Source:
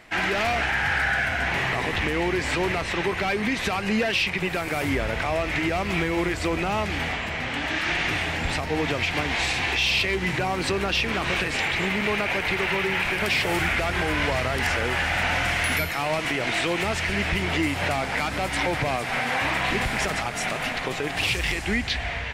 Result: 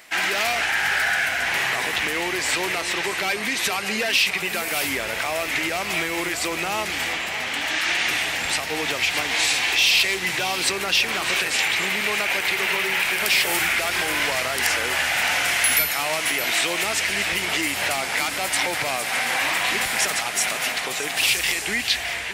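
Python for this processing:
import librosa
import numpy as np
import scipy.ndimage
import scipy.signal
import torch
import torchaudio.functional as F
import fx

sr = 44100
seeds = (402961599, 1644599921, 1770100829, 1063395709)

y = fx.riaa(x, sr, side='recording')
y = y + 10.0 ** (-11.5 / 20.0) * np.pad(y, (int(616 * sr / 1000.0), 0))[:len(y)]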